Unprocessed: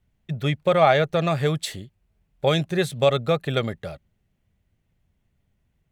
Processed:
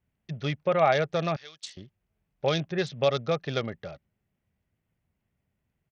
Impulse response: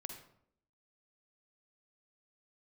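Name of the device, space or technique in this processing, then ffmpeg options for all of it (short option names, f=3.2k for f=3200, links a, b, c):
Bluetooth headset: -filter_complex "[0:a]asettb=1/sr,asplit=3[a][b][c];[a]atrim=end=1.364[d];[b]atrim=start=1.36:end=1.77,asetpts=PTS-STARTPTS,afade=t=in:d=0.004:c=qsin,afade=t=out:st=0.406:d=0.004:c=qsin,aderivative[e];[c]atrim=start=1.766[f];[d][e]acrossfade=d=0.004:c1=hsin:c2=qsin[g];[g][f]acrossfade=d=0.004:c1=qsin:c2=hsin,highpass=f=110:p=1,aresample=16000,aresample=44100,volume=-5dB" -ar 48000 -c:a sbc -b:a 64k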